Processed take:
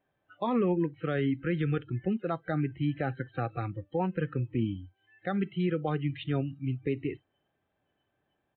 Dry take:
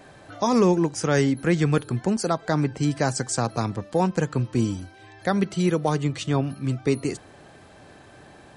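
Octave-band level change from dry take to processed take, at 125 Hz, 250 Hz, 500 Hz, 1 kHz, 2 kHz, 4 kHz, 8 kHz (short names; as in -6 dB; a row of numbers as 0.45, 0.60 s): -7.0 dB, -7.0 dB, -8.5 dB, -9.0 dB, -8.0 dB, -12.5 dB, under -40 dB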